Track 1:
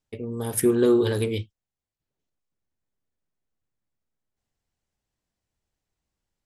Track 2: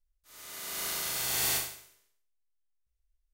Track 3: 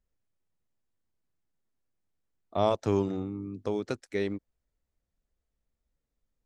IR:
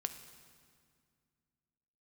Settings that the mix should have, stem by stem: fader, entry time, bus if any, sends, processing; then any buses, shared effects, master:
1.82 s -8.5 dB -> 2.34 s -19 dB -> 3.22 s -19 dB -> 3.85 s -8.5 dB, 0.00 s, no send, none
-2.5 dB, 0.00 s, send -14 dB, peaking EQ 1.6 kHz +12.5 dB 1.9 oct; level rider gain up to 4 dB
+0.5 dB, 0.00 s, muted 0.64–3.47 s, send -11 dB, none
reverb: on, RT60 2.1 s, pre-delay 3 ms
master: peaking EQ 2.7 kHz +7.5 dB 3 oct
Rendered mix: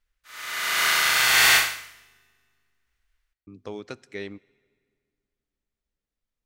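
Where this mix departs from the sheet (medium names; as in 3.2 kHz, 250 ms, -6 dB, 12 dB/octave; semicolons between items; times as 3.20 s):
stem 1: muted; stem 3 +0.5 dB -> -8.5 dB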